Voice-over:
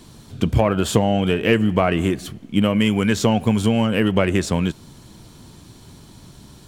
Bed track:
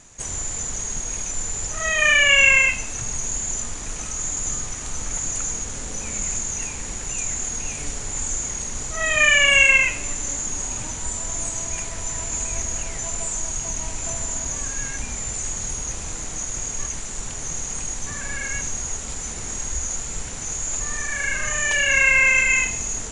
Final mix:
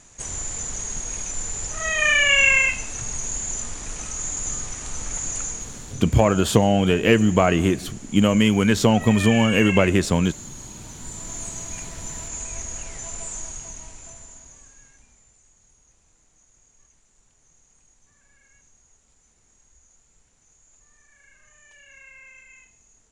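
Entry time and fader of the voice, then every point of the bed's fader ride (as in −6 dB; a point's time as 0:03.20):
5.60 s, +0.5 dB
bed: 0:05.40 −2 dB
0:06.16 −13 dB
0:10.79 −13 dB
0:11.34 −6 dB
0:13.39 −6 dB
0:15.43 −31 dB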